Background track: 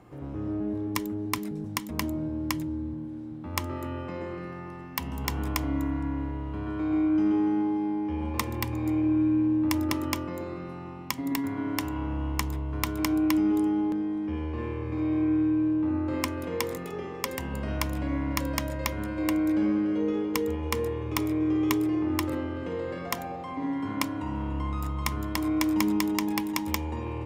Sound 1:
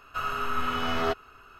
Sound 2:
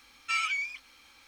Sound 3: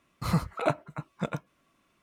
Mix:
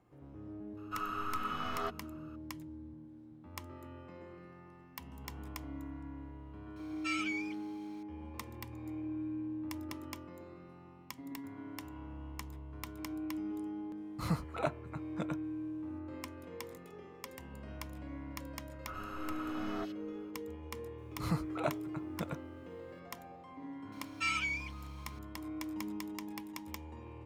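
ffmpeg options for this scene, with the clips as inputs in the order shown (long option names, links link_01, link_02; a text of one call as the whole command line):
ffmpeg -i bed.wav -i cue0.wav -i cue1.wav -i cue2.wav -filter_complex "[1:a]asplit=2[link_01][link_02];[2:a]asplit=2[link_03][link_04];[3:a]asplit=2[link_05][link_06];[0:a]volume=-15.5dB[link_07];[link_01]equalizer=frequency=1200:width=5.6:gain=8[link_08];[link_02]acrossover=split=2500[link_09][link_10];[link_10]adelay=70[link_11];[link_09][link_11]amix=inputs=2:normalize=0[link_12];[link_06]acrusher=bits=11:mix=0:aa=0.000001[link_13];[link_08]atrim=end=1.59,asetpts=PTS-STARTPTS,volume=-12.5dB,afade=type=in:duration=0.004:curve=hsin,afade=type=out:start_time=1.586:duration=0.004:curve=hsin,adelay=770[link_14];[link_03]atrim=end=1.27,asetpts=PTS-STARTPTS,volume=-8dB,afade=type=in:duration=0.004:curve=hsin,afade=type=out:start_time=1.266:duration=0.004:curve=hsin,adelay=6760[link_15];[link_05]atrim=end=2.02,asetpts=PTS-STARTPTS,volume=-7.5dB,afade=type=in:duration=0.004:curve=hsin,afade=type=out:start_time=2.016:duration=0.004:curve=hsin,adelay=13970[link_16];[link_12]atrim=end=1.59,asetpts=PTS-STARTPTS,volume=-14.5dB,afade=type=in:duration=0.004:curve=hsin,afade=type=out:start_time=1.586:duration=0.004:curve=hsin,adelay=18720[link_17];[link_13]atrim=end=2.02,asetpts=PTS-STARTPTS,volume=-8dB,afade=type=in:duration=0.004:curve=hsin,afade=type=out:start_time=2.016:duration=0.004:curve=hsin,adelay=20980[link_18];[link_04]atrim=end=1.27,asetpts=PTS-STARTPTS,volume=-4.5dB,afade=type=in:duration=0.004:curve=hsin,afade=type=out:start_time=1.266:duration=0.004:curve=hsin,adelay=23920[link_19];[link_07][link_14][link_15][link_16][link_17][link_18][link_19]amix=inputs=7:normalize=0" out.wav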